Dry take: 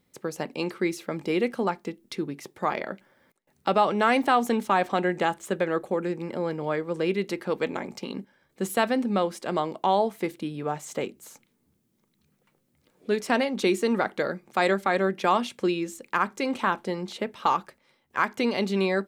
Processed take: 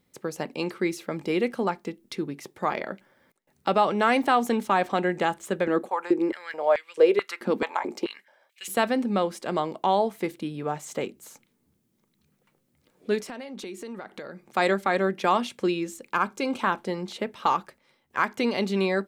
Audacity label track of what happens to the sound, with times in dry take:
5.670000	8.680000	high-pass on a step sequencer 4.6 Hz 230–2,600 Hz
13.220000	14.470000	downward compressor 4 to 1, threshold −37 dBFS
16.120000	16.610000	Butterworth band-reject 1,900 Hz, Q 6

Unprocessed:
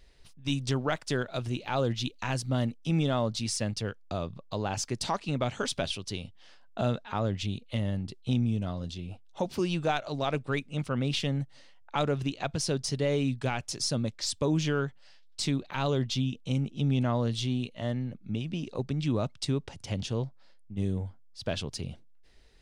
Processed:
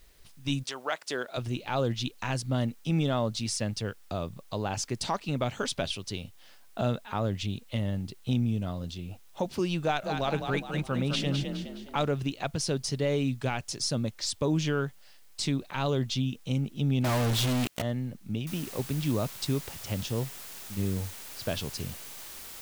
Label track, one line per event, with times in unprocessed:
0.620000	1.360000	high-pass filter 820 Hz → 280 Hz
9.820000	12.120000	echo with shifted repeats 208 ms, feedback 43%, per repeat +36 Hz, level −6 dB
17.040000	17.820000	log-companded quantiser 2 bits
18.470000	18.470000	noise floor change −65 dB −44 dB

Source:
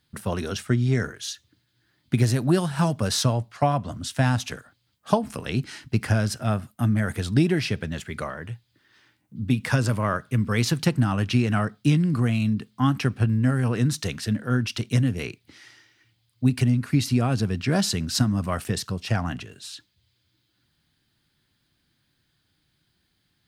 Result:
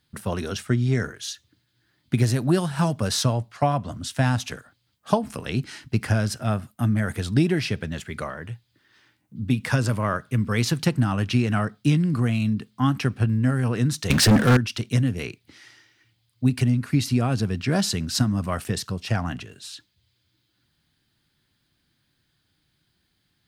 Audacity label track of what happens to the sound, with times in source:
14.100000	14.570000	leveller curve on the samples passes 5

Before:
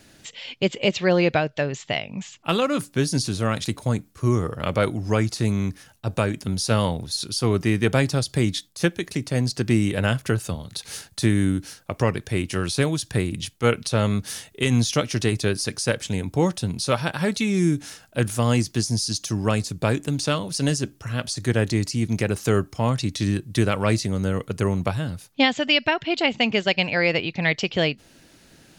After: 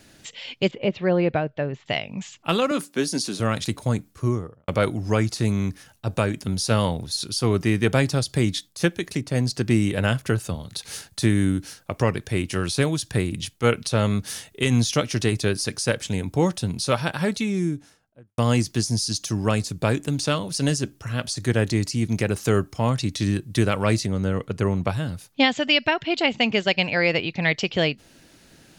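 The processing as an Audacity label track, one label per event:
0.710000	1.860000	head-to-tape spacing loss at 10 kHz 34 dB
2.710000	3.400000	high-pass filter 200 Hz 24 dB per octave
4.110000	4.680000	fade out and dull
9.210000	10.540000	one half of a high-frequency compander decoder only
17.110000	18.380000	fade out and dull
24.060000	24.890000	high-shelf EQ 6,900 Hz −11.5 dB

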